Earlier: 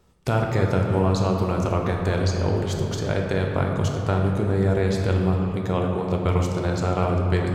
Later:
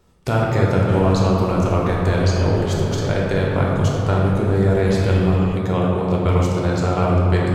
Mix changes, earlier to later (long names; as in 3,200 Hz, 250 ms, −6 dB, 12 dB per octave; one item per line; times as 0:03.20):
speech: send +6.0 dB
background +11.5 dB